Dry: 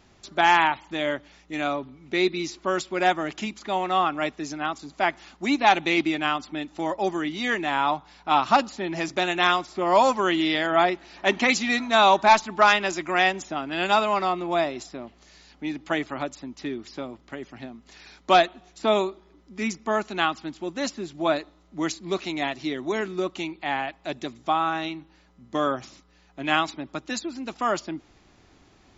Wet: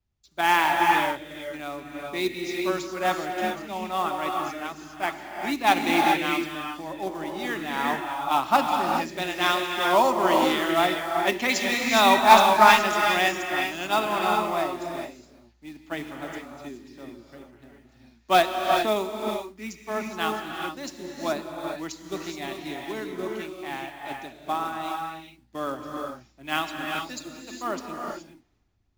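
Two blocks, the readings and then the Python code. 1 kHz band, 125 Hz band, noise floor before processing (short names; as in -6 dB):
+0.5 dB, -2.5 dB, -58 dBFS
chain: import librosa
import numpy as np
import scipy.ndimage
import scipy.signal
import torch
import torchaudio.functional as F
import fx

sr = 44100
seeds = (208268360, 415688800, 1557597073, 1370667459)

y = fx.quant_float(x, sr, bits=2)
y = fx.rev_gated(y, sr, seeds[0], gate_ms=450, shape='rising', drr_db=0.0)
y = fx.band_widen(y, sr, depth_pct=70)
y = y * 10.0 ** (-4.5 / 20.0)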